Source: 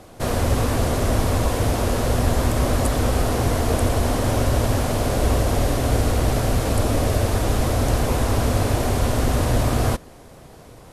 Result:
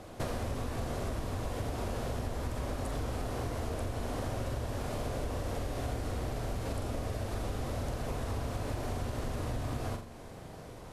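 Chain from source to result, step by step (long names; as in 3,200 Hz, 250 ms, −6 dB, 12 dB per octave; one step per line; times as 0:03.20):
high-shelf EQ 7,300 Hz −6.5 dB
flutter between parallel walls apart 7.4 metres, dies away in 0.35 s
downward compressor 12 to 1, threshold −28 dBFS, peak gain reduction 16 dB
level −3.5 dB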